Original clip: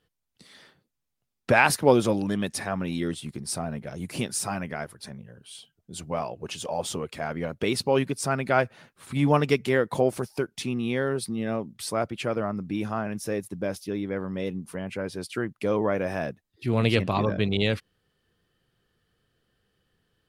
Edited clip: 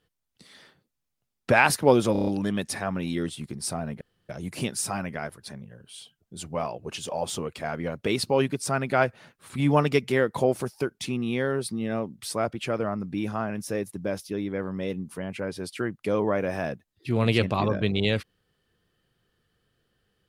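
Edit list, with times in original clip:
2.12 s: stutter 0.03 s, 6 plays
3.86 s: insert room tone 0.28 s

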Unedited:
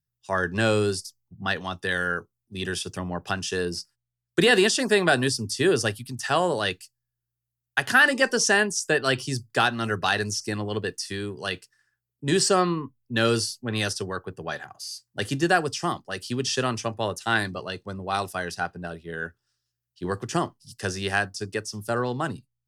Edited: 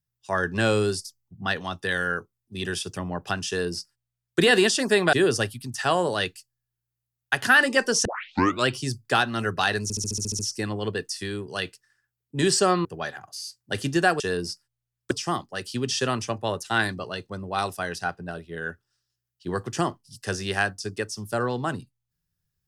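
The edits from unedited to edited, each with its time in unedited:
3.48–4.39 s: copy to 15.67 s
5.13–5.58 s: delete
8.50 s: tape start 0.62 s
10.28 s: stutter 0.07 s, 9 plays
12.74–14.32 s: delete

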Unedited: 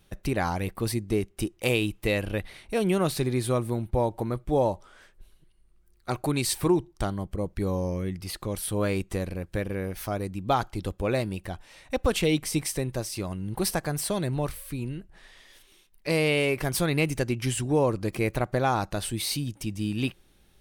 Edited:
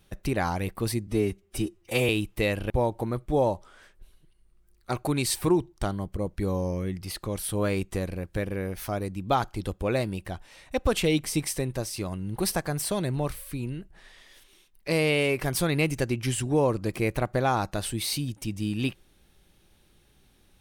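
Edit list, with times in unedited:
1.07–1.75 s: stretch 1.5×
2.36–3.89 s: delete

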